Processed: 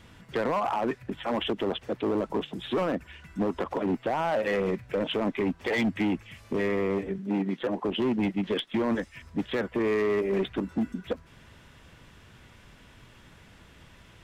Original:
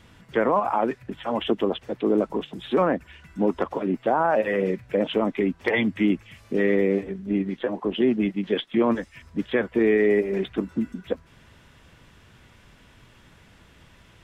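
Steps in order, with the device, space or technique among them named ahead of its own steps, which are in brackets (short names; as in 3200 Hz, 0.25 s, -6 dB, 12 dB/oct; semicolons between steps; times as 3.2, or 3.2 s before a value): limiter into clipper (limiter -16 dBFS, peak gain reduction 5.5 dB; hard clip -22 dBFS, distortion -13 dB); 7.18–7.62 HPF 140 Hz 24 dB/oct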